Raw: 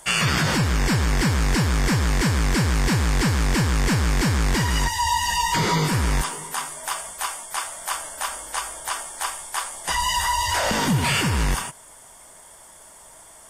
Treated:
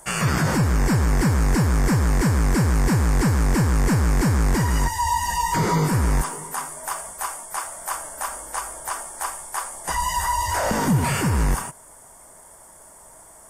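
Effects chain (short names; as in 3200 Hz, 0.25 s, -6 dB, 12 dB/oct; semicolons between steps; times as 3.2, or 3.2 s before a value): bell 3400 Hz -13.5 dB 1.4 oct; gain +2 dB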